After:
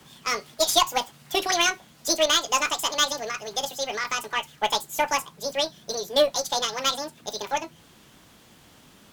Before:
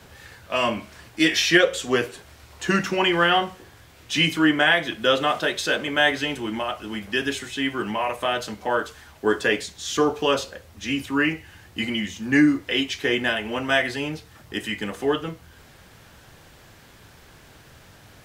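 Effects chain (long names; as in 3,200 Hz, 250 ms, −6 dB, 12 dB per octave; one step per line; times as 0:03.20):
harmonic generator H 3 −14 dB, 6 −32 dB, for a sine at −3.5 dBFS
hard clipping −14 dBFS, distortion −16 dB
wrong playback speed 7.5 ips tape played at 15 ips
level +4 dB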